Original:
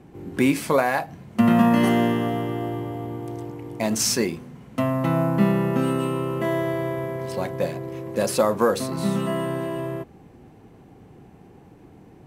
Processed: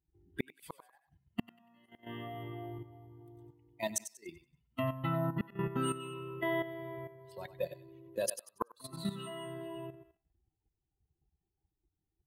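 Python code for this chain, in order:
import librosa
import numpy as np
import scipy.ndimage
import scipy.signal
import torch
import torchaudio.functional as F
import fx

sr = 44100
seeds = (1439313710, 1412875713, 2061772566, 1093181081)

p1 = fx.bin_expand(x, sr, power=2.0)
p2 = fx.tilt_eq(p1, sr, slope=1.5)
p3 = fx.gate_flip(p2, sr, shuts_db=-18.0, range_db=-39)
p4 = p3 + fx.echo_thinned(p3, sr, ms=95, feedback_pct=30, hz=840.0, wet_db=-9.5, dry=0)
p5 = fx.level_steps(p4, sr, step_db=11)
y = p5 * 10.0 ** (1.0 / 20.0)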